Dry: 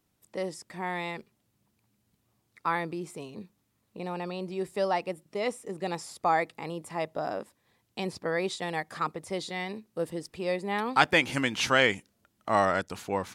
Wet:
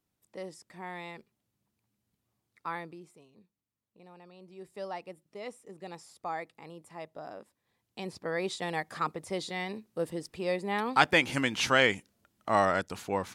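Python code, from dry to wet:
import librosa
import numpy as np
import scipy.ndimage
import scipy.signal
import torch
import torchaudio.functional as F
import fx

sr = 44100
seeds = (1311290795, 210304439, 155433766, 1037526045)

y = fx.gain(x, sr, db=fx.line((2.78, -8.0), (3.25, -18.5), (4.31, -18.5), (4.83, -11.0), (7.41, -11.0), (8.63, -1.0)))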